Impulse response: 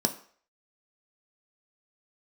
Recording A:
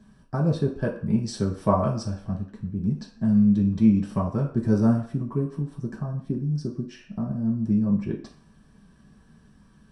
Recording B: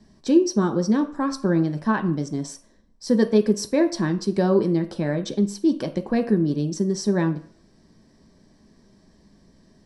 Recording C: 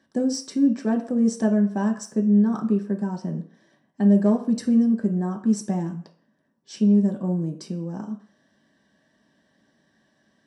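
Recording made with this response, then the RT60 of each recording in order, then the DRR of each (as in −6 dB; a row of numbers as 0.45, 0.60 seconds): B; 0.50, 0.50, 0.50 seconds; −4.5, 5.0, 1.0 decibels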